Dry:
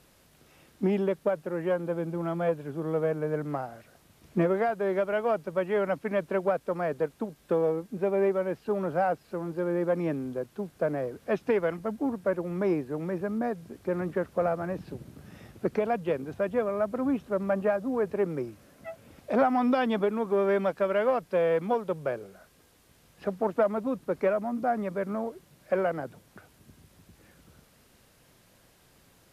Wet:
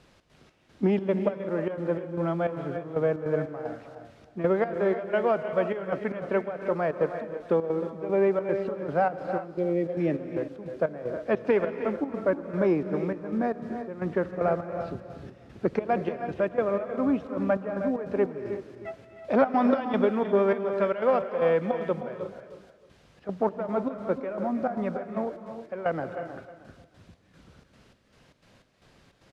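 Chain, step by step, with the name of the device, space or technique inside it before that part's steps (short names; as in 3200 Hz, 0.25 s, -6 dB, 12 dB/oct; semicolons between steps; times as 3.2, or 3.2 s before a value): trance gate with a delay (step gate "xx.xx..xxx.xx.." 152 bpm -12 dB; feedback echo 0.312 s, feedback 25%, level -13 dB); spectral repair 9.57–10.1, 800–1800 Hz both; LPF 5000 Hz 12 dB/oct; non-linear reverb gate 0.38 s rising, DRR 9 dB; gain +2.5 dB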